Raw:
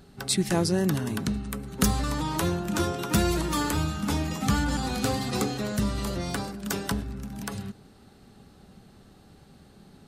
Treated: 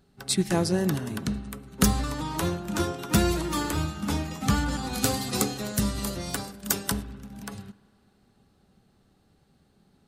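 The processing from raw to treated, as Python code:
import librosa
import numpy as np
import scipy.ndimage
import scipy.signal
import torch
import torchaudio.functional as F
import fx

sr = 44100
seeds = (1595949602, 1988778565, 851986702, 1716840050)

y = fx.high_shelf(x, sr, hz=5600.0, db=11.0, at=(4.93, 7.03))
y = fx.rev_spring(y, sr, rt60_s=2.4, pass_ms=(49,), chirp_ms=75, drr_db=14.0)
y = fx.upward_expand(y, sr, threshold_db=-45.0, expansion=1.5)
y = y * librosa.db_to_amplitude(2.5)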